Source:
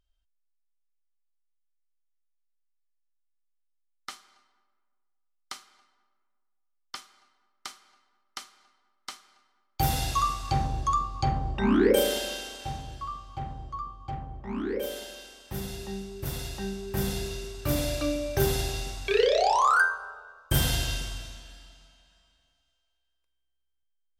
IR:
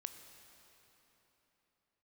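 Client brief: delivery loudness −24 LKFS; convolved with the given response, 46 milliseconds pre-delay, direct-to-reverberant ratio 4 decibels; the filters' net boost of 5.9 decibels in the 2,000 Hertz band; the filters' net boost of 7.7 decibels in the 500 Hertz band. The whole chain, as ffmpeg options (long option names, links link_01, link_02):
-filter_complex "[0:a]equalizer=frequency=500:width_type=o:gain=9,equalizer=frequency=2000:width_type=o:gain=8,asplit=2[link_01][link_02];[1:a]atrim=start_sample=2205,adelay=46[link_03];[link_02][link_03]afir=irnorm=-1:irlink=0,volume=-0.5dB[link_04];[link_01][link_04]amix=inputs=2:normalize=0,volume=-2.5dB"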